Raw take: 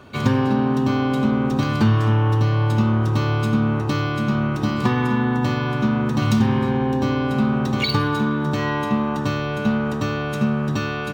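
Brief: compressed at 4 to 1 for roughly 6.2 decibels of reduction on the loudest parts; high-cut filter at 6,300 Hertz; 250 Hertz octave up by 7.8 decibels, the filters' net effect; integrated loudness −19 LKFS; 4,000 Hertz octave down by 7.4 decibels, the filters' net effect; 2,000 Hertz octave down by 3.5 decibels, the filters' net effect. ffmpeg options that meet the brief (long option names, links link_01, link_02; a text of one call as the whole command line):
ffmpeg -i in.wav -af "lowpass=6300,equalizer=frequency=250:width_type=o:gain=9,equalizer=frequency=2000:width_type=o:gain=-4,equalizer=frequency=4000:width_type=o:gain=-7.5,acompressor=threshold=-15dB:ratio=4" out.wav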